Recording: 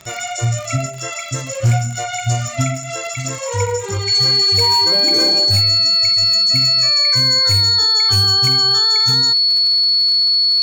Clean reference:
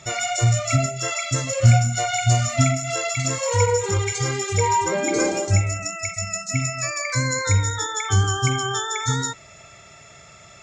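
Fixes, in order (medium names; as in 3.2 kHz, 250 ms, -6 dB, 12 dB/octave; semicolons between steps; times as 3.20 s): clip repair -8.5 dBFS; de-click; band-stop 4.4 kHz, Q 30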